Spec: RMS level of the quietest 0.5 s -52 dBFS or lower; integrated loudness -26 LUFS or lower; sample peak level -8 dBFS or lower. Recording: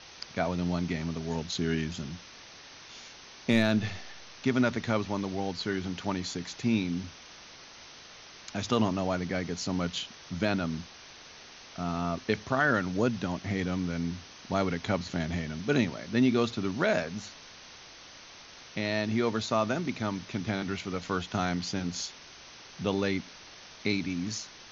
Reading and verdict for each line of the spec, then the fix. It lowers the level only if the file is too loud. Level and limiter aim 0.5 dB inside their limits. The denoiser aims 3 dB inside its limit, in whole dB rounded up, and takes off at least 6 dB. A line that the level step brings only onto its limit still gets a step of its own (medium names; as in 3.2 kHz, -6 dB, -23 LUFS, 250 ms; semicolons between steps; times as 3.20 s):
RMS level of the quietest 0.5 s -50 dBFS: fail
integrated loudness -31.0 LUFS: pass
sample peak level -12.0 dBFS: pass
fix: noise reduction 6 dB, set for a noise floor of -50 dBFS